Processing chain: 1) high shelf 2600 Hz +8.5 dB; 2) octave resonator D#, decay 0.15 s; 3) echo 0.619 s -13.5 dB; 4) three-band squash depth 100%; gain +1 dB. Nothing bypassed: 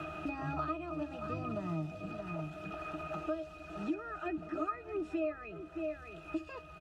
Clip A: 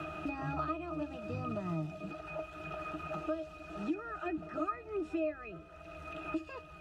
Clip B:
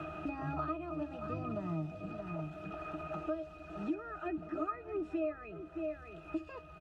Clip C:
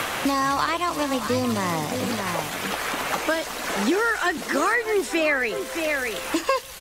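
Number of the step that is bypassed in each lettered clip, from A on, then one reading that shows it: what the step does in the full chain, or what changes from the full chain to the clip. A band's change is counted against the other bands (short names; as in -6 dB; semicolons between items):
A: 3, momentary loudness spread change +3 LU; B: 1, 4 kHz band -4.5 dB; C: 2, 4 kHz band +14.0 dB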